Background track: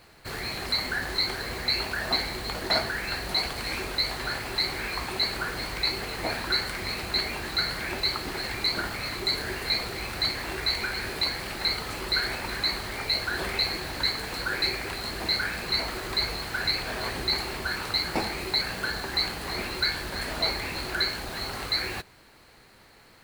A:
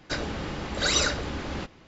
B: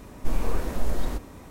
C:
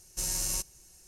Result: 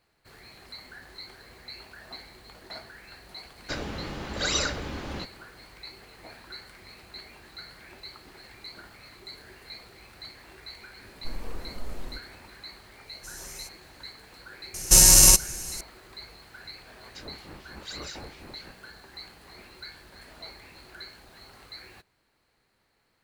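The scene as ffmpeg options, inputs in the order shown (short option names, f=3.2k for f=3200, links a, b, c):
-filter_complex "[1:a]asplit=2[a][b];[3:a]asplit=2[c][d];[0:a]volume=-17dB[e];[c]aecho=1:1:7.5:0.9[f];[d]alimiter=level_in=22.5dB:limit=-1dB:release=50:level=0:latency=1[g];[b]acrossover=split=1900[h][i];[h]aeval=exprs='val(0)*(1-1/2+1/2*cos(2*PI*4.2*n/s))':c=same[j];[i]aeval=exprs='val(0)*(1-1/2-1/2*cos(2*PI*4.2*n/s))':c=same[k];[j][k]amix=inputs=2:normalize=0[l];[a]atrim=end=1.87,asetpts=PTS-STARTPTS,volume=-3dB,afade=t=in:d=0.004:c=hsin,afade=t=out:st=1.866:d=0.004:c=hsin,adelay=3590[m];[2:a]atrim=end=1.5,asetpts=PTS-STARTPTS,volume=-11dB,afade=t=in:d=0.004:c=hsin,afade=t=out:st=1.496:d=0.004:c=hsin,adelay=11000[n];[f]atrim=end=1.07,asetpts=PTS-STARTPTS,volume=-14dB,afade=t=in:d=0.004:c=hsin,afade=t=out:st=1.066:d=0.004:c=hsin,adelay=13060[o];[g]atrim=end=1.07,asetpts=PTS-STARTPTS,volume=-2dB,afade=t=in:d=0.004:c=hsin,afade=t=out:st=1.066:d=0.004:c=hsin,adelay=14740[p];[l]atrim=end=1.87,asetpts=PTS-STARTPTS,volume=-10dB,afade=t=in:d=0.004:c=hsin,afade=t=out:st=1.866:d=0.004:c=hsin,adelay=17050[q];[e][m][n][o][p][q]amix=inputs=6:normalize=0"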